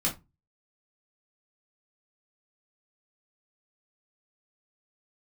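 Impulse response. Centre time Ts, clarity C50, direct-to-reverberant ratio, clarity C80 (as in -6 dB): 18 ms, 13.0 dB, -4.0 dB, 21.5 dB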